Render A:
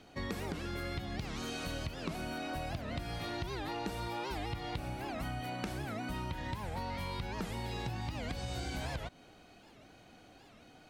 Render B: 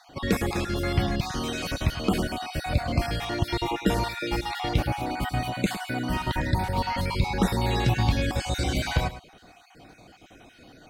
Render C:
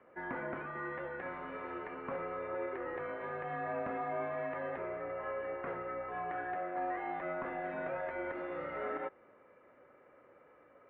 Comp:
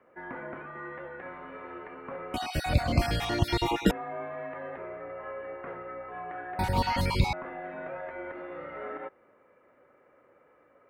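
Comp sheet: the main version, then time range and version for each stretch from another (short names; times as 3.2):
C
2.34–3.91 from B
6.59–7.33 from B
not used: A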